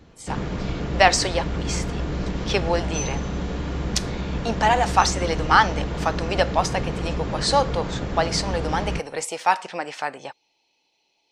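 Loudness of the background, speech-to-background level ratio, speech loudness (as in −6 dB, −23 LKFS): −28.5 LKFS, 5.0 dB, −23.5 LKFS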